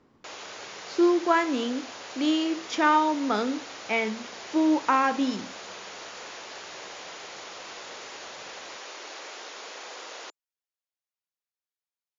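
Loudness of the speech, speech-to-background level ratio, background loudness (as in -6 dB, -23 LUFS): -25.5 LUFS, 14.5 dB, -40.0 LUFS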